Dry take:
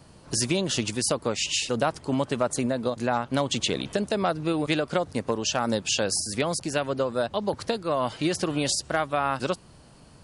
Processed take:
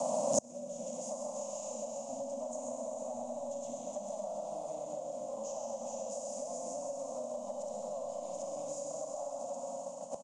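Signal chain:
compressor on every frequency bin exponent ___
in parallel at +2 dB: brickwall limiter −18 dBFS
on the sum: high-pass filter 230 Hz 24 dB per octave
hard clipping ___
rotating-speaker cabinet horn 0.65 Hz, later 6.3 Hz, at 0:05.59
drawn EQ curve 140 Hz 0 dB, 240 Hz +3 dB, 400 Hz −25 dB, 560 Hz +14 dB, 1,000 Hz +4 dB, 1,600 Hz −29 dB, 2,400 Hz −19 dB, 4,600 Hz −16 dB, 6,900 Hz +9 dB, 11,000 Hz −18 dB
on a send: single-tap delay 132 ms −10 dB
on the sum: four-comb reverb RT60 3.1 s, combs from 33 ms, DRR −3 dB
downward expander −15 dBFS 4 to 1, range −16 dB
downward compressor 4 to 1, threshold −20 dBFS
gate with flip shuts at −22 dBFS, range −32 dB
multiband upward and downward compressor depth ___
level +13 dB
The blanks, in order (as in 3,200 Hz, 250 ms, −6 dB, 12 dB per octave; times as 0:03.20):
0.6, −15.5 dBFS, 40%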